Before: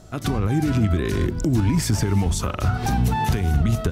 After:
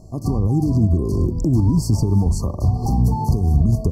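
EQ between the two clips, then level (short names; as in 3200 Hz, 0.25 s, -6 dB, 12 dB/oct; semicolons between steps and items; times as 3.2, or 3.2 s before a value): brick-wall FIR band-stop 1200–4200 Hz; low shelf 460 Hz +9 dB; -4.5 dB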